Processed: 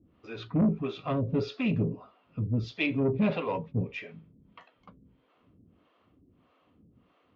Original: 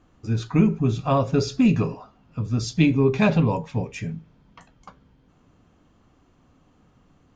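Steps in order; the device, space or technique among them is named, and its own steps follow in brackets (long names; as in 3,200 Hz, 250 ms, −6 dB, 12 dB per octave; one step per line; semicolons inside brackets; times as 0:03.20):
guitar amplifier with harmonic tremolo (two-band tremolo in antiphase 1.6 Hz, depth 100%, crossover 420 Hz; soft clipping −20.5 dBFS, distortion −10 dB; loudspeaker in its box 80–3,500 Hz, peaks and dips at 140 Hz −6 dB, 830 Hz −7 dB, 1,600 Hz −6 dB)
level +2 dB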